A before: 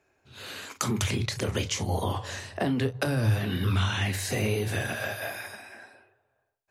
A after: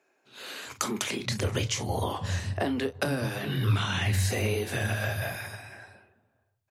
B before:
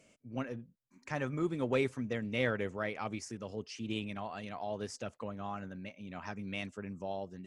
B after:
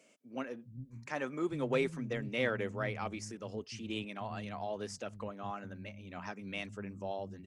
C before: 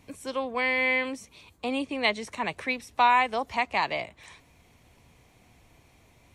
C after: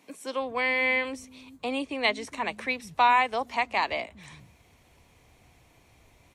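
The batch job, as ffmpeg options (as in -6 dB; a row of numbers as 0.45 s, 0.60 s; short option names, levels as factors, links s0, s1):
-filter_complex "[0:a]acrossover=split=190[s0][s1];[s0]adelay=410[s2];[s2][s1]amix=inputs=2:normalize=0"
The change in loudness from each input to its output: -0.5 LU, -0.5 LU, 0.0 LU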